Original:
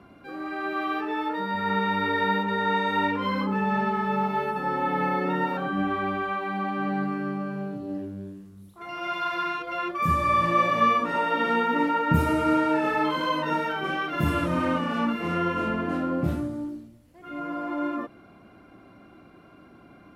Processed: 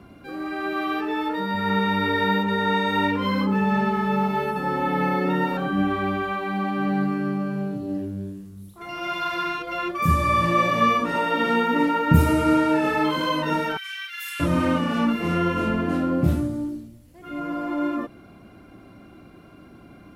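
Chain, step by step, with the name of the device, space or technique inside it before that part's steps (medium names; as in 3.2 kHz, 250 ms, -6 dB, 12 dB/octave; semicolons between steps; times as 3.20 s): smiley-face EQ (bass shelf 120 Hz +6 dB; peaking EQ 1.1 kHz -3.5 dB 2 oct; treble shelf 5.8 kHz +5.5 dB); 13.77–14.40 s: steep high-pass 1.7 kHz 36 dB/octave; trim +4 dB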